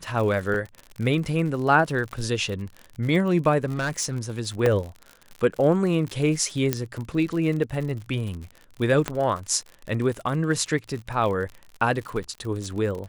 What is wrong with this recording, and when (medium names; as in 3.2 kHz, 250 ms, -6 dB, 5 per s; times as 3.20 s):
crackle 61 per s -31 dBFS
0.54 s: dropout 3.4 ms
3.64–4.17 s: clipped -22 dBFS
4.66 s: dropout 2.2 ms
6.73 s: pop -7 dBFS
9.08 s: pop -10 dBFS